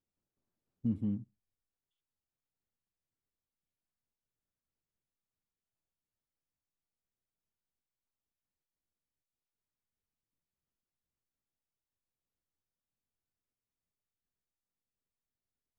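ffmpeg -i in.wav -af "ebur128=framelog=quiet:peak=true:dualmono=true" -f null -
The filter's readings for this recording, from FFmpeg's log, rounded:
Integrated loudness:
  I:         -33.7 LUFS
  Threshold: -44.2 LUFS
Loudness range:
  LRA:         7.6 LU
  Threshold: -61.0 LUFS
  LRA low:   -47.6 LUFS
  LRA high:  -40.0 LUFS
True peak:
  Peak:      -22.5 dBFS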